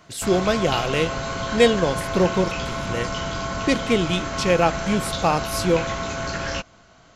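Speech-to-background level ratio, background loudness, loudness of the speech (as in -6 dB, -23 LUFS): 5.0 dB, -27.5 LUFS, -22.5 LUFS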